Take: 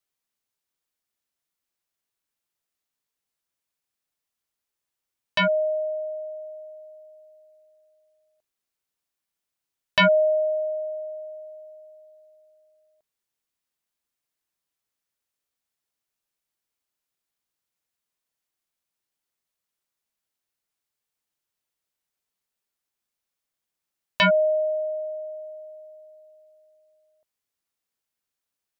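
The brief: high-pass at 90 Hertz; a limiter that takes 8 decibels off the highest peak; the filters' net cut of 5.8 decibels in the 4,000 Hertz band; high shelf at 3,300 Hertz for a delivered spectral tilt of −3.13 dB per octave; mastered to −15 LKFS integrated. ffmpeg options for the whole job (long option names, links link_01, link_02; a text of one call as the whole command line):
ffmpeg -i in.wav -af "highpass=90,highshelf=frequency=3300:gain=-3.5,equalizer=frequency=4000:width_type=o:gain=-6,volume=12.5dB,alimiter=limit=-6.5dB:level=0:latency=1" out.wav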